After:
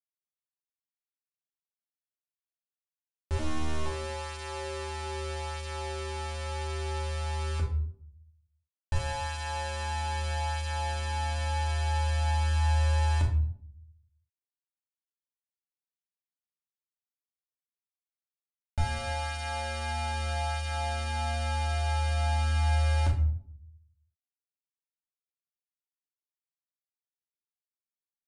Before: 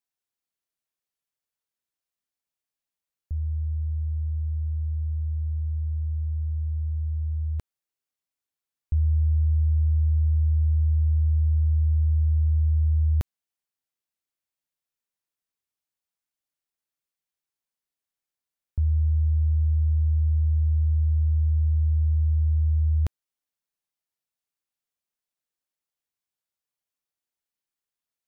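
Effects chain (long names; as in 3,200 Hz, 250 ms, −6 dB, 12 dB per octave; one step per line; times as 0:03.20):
0:03.39–0:03.86: gain on one half-wave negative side −3 dB
bit reduction 5 bits
flanger 0.2 Hz, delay 4.5 ms, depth 7.8 ms, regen +12%
convolution reverb RT60 0.60 s, pre-delay 3 ms, DRR 0 dB
downsampling to 22,050 Hz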